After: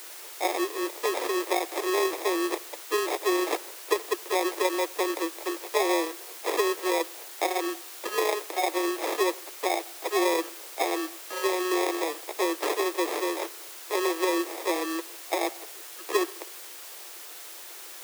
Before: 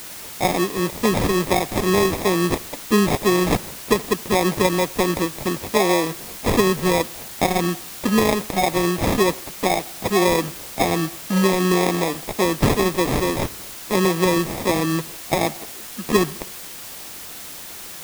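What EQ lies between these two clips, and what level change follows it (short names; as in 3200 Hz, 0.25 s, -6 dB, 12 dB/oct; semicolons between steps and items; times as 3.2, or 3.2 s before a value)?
Chebyshev high-pass 330 Hz, order 6; -6.0 dB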